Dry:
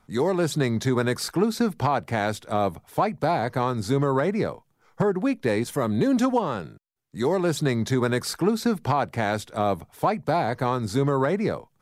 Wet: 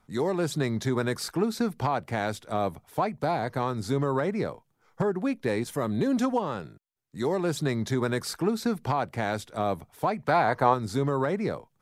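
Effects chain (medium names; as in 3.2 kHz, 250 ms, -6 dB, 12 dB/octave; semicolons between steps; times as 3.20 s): 10.18–10.73 s: peaking EQ 2.2 kHz -> 720 Hz +10 dB 1.9 oct; trim -4 dB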